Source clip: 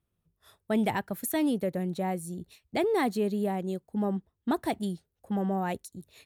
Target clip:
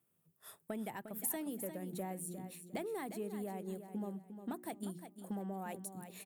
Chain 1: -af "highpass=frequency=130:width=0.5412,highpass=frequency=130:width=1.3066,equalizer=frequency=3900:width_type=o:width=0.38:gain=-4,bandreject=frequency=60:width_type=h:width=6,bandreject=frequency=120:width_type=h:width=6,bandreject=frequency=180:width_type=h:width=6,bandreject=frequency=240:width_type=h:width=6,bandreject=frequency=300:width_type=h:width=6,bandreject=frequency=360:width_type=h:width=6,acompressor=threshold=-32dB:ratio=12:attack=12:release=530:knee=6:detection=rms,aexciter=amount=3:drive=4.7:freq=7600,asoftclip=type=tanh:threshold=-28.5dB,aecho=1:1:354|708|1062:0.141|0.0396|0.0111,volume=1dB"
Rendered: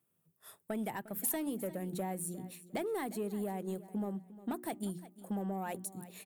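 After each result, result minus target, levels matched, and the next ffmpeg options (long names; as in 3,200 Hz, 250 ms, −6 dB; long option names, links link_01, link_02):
downward compressor: peak gain reduction −5.5 dB; echo-to-direct −7 dB
-af "highpass=frequency=130:width=0.5412,highpass=frequency=130:width=1.3066,equalizer=frequency=3900:width_type=o:width=0.38:gain=-4,bandreject=frequency=60:width_type=h:width=6,bandreject=frequency=120:width_type=h:width=6,bandreject=frequency=180:width_type=h:width=6,bandreject=frequency=240:width_type=h:width=6,bandreject=frequency=300:width_type=h:width=6,bandreject=frequency=360:width_type=h:width=6,acompressor=threshold=-38dB:ratio=12:attack=12:release=530:knee=6:detection=rms,aexciter=amount=3:drive=4.7:freq=7600,asoftclip=type=tanh:threshold=-28.5dB,aecho=1:1:354|708|1062:0.141|0.0396|0.0111,volume=1dB"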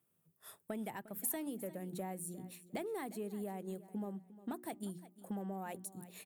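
echo-to-direct −7 dB
-af "highpass=frequency=130:width=0.5412,highpass=frequency=130:width=1.3066,equalizer=frequency=3900:width_type=o:width=0.38:gain=-4,bandreject=frequency=60:width_type=h:width=6,bandreject=frequency=120:width_type=h:width=6,bandreject=frequency=180:width_type=h:width=6,bandreject=frequency=240:width_type=h:width=6,bandreject=frequency=300:width_type=h:width=6,bandreject=frequency=360:width_type=h:width=6,acompressor=threshold=-38dB:ratio=12:attack=12:release=530:knee=6:detection=rms,aexciter=amount=3:drive=4.7:freq=7600,asoftclip=type=tanh:threshold=-28.5dB,aecho=1:1:354|708|1062:0.316|0.0885|0.0248,volume=1dB"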